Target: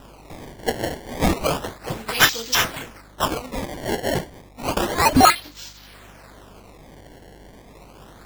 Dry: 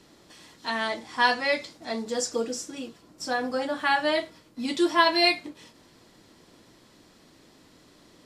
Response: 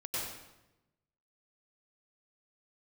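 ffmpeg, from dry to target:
-af "aexciter=amount=8.6:drive=8.9:freq=3.3k,acrusher=samples=20:mix=1:aa=0.000001:lfo=1:lforange=32:lforate=0.31,aeval=exprs='val(0)+0.00794*(sin(2*PI*50*n/s)+sin(2*PI*2*50*n/s)/2+sin(2*PI*3*50*n/s)/3+sin(2*PI*4*50*n/s)/4+sin(2*PI*5*50*n/s)/5)':c=same,volume=-7dB"

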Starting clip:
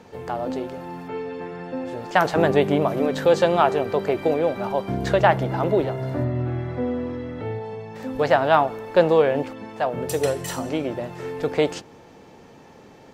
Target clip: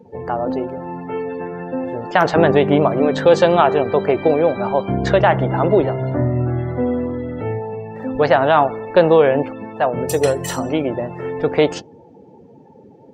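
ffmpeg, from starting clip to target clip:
-af "afftdn=nr=24:nf=-41,alimiter=level_in=7dB:limit=-1dB:release=50:level=0:latency=1,volume=-1dB"

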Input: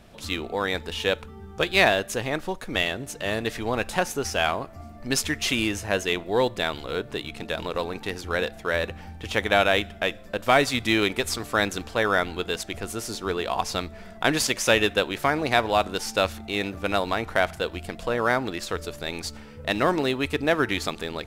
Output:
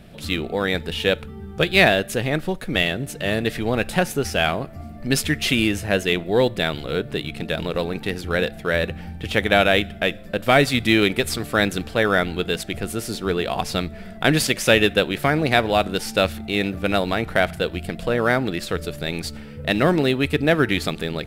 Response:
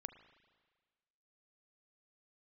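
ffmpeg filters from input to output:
-af "equalizer=f=160:t=o:w=0.67:g=7,equalizer=f=1k:t=o:w=0.67:g=-8,equalizer=f=6.3k:t=o:w=0.67:g=-7,volume=5dB"

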